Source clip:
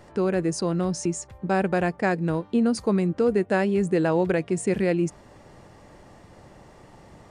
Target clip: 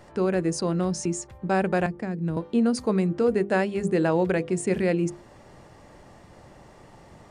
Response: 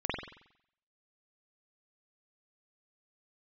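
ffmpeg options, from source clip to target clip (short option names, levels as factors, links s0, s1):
-filter_complex "[0:a]bandreject=f=50:t=h:w=6,bandreject=f=100:t=h:w=6,bandreject=f=150:t=h:w=6,bandreject=f=200:t=h:w=6,bandreject=f=250:t=h:w=6,bandreject=f=300:t=h:w=6,bandreject=f=350:t=h:w=6,bandreject=f=400:t=h:w=6,bandreject=f=450:t=h:w=6,bandreject=f=500:t=h:w=6,asettb=1/sr,asplit=3[s0][s1][s2];[s0]atrim=end=1.864[s3];[s1]atrim=start=1.86:end=2.37,asetpts=PTS-STARTPTS,afade=t=in:d=0.004:c=qsin,afade=t=out:st=0.506:d=0.004:c=qsin,acrossover=split=280[s4][s5];[s5]acompressor=threshold=0.0158:ratio=8[s6];[s4][s6]amix=inputs=2:normalize=0[s7];[s2]atrim=start=2.366[s8];[s3][s7]acrossfade=d=0.004:c1=hsin:c2=qsin[s9];[s9][s8]acrossfade=d=0.004:c1=qsin:c2=hsin"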